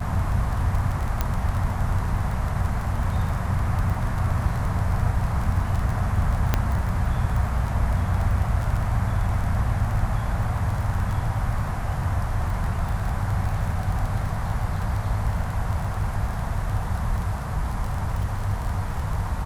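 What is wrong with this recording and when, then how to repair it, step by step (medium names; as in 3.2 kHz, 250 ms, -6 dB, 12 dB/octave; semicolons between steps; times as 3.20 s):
crackle 21 per s -27 dBFS
1.21 s: pop -9 dBFS
6.54 s: pop -6 dBFS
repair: de-click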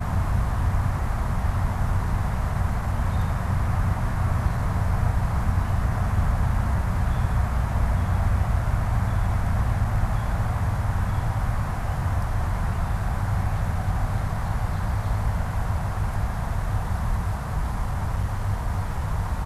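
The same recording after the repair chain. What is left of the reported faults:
nothing left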